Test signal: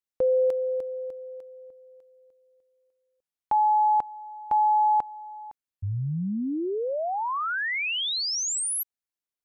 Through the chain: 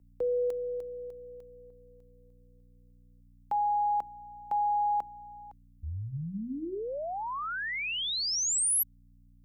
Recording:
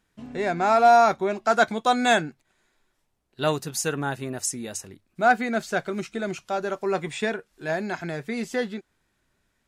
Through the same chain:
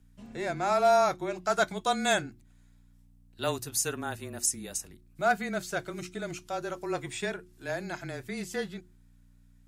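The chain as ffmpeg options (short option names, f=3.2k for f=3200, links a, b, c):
-af "aeval=exprs='val(0)+0.00316*(sin(2*PI*60*n/s)+sin(2*PI*2*60*n/s)/2+sin(2*PI*3*60*n/s)/3+sin(2*PI*4*60*n/s)/4+sin(2*PI*5*60*n/s)/5)':c=same,afreqshift=-23,crystalizer=i=1.5:c=0,bandreject=f=60:t=h:w=6,bandreject=f=120:t=h:w=6,bandreject=f=180:t=h:w=6,bandreject=f=240:t=h:w=6,bandreject=f=300:t=h:w=6,bandreject=f=360:t=h:w=6,volume=-7dB"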